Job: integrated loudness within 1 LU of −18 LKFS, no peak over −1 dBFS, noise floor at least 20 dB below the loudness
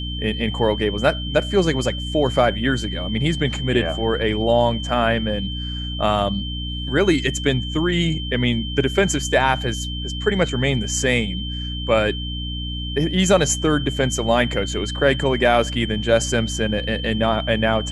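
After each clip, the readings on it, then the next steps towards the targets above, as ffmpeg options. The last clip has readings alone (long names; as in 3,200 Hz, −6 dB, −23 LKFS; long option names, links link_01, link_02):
mains hum 60 Hz; hum harmonics up to 300 Hz; level of the hum −26 dBFS; interfering tone 3,100 Hz; level of the tone −30 dBFS; integrated loudness −20.5 LKFS; sample peak −2.5 dBFS; target loudness −18.0 LKFS
→ -af "bandreject=frequency=60:width_type=h:width=6,bandreject=frequency=120:width_type=h:width=6,bandreject=frequency=180:width_type=h:width=6,bandreject=frequency=240:width_type=h:width=6,bandreject=frequency=300:width_type=h:width=6"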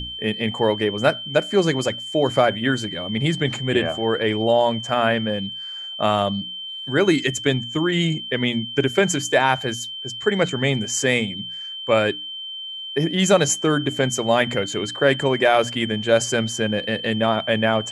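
mains hum none found; interfering tone 3,100 Hz; level of the tone −30 dBFS
→ -af "bandreject=frequency=3100:width=30"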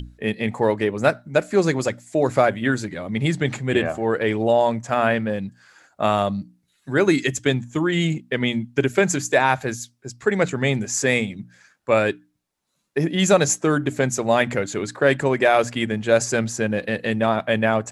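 interfering tone none found; integrated loudness −21.5 LKFS; sample peak −3.5 dBFS; target loudness −18.0 LKFS
→ -af "volume=3.5dB,alimiter=limit=-1dB:level=0:latency=1"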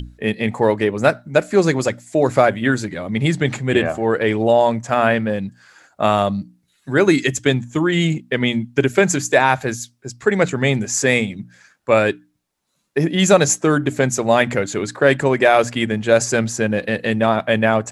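integrated loudness −18.0 LKFS; sample peak −1.0 dBFS; background noise floor −65 dBFS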